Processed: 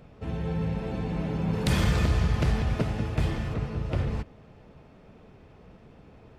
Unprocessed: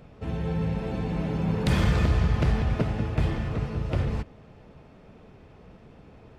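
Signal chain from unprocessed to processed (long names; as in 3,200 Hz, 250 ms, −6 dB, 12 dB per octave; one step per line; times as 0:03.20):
0:01.53–0:03.54: high-shelf EQ 4,600 Hz +8 dB
level −1.5 dB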